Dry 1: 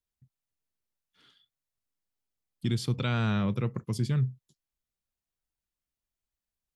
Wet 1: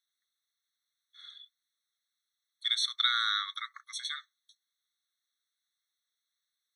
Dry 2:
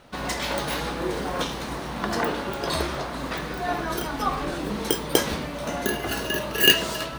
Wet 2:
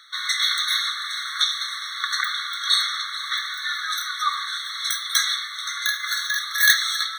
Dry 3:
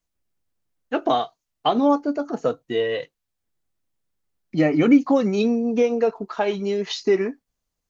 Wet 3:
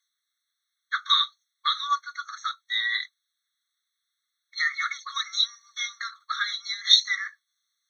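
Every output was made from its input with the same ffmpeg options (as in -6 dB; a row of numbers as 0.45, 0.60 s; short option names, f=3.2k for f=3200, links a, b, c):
-af "equalizer=f=3.6k:w=0.92:g=14,afftfilt=real='re*eq(mod(floor(b*sr/1024/1100),2),1)':imag='im*eq(mod(floor(b*sr/1024/1100),2),1)':win_size=1024:overlap=0.75,volume=2dB"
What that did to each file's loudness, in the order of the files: -0.5, +3.5, -3.5 LU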